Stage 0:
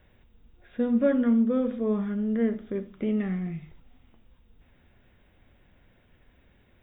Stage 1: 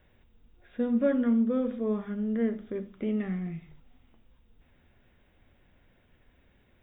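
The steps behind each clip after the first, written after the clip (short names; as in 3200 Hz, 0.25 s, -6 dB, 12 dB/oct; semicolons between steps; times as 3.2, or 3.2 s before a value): notches 50/100/150/200 Hz; gain -2.5 dB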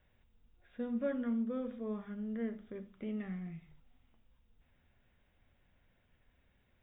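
bell 340 Hz -5 dB 1.1 oct; gain -7.5 dB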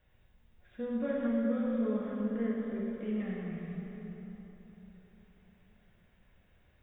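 plate-style reverb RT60 4.1 s, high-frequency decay 0.75×, DRR -4 dB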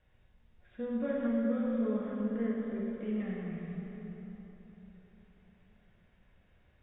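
air absorption 80 m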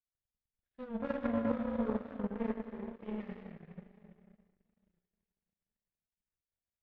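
power-law curve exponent 2; record warp 45 rpm, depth 100 cents; gain +3.5 dB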